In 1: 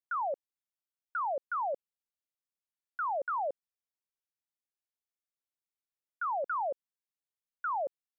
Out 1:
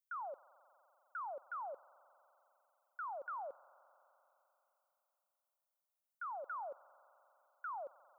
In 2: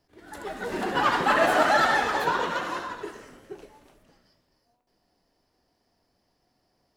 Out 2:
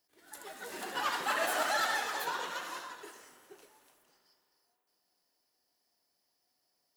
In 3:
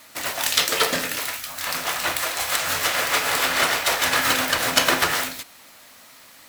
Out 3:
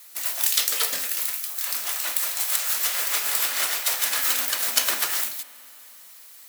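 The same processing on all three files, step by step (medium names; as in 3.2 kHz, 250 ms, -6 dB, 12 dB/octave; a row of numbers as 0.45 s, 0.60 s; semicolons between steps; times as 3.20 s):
RIAA curve recording; spring tank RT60 3.6 s, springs 43 ms, chirp 70 ms, DRR 18.5 dB; trim -11 dB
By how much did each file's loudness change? -11.5 LU, -10.0 LU, -1.0 LU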